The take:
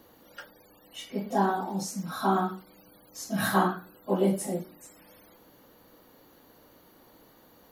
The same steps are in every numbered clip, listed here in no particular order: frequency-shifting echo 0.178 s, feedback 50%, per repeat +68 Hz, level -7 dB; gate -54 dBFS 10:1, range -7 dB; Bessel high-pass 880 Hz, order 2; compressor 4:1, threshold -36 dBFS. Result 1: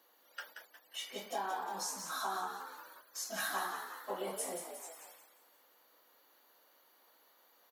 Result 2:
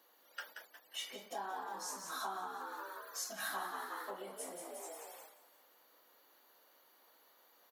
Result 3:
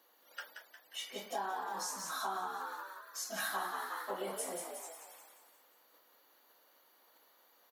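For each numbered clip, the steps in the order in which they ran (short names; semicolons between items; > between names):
Bessel high-pass > compressor > frequency-shifting echo > gate; frequency-shifting echo > compressor > Bessel high-pass > gate; gate > Bessel high-pass > frequency-shifting echo > compressor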